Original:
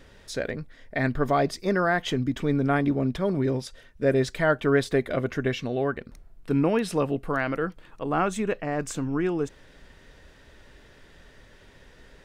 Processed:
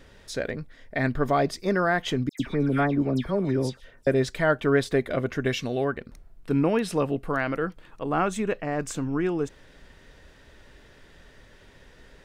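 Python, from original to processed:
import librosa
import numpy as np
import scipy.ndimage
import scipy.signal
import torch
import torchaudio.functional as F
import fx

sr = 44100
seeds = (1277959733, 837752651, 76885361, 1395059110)

y = fx.dispersion(x, sr, late='lows', ms=105.0, hz=2400.0, at=(2.29, 4.07))
y = fx.high_shelf(y, sr, hz=4100.0, db=9.5, at=(5.45, 5.85))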